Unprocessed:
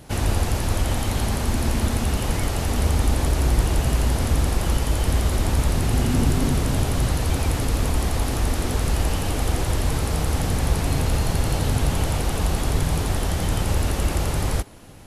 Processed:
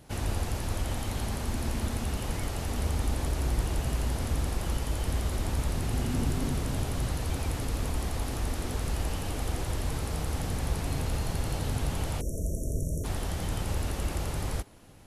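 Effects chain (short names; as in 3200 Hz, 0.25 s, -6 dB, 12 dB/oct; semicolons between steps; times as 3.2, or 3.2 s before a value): spectral delete 12.21–13.04, 680–5500 Hz; gain -9 dB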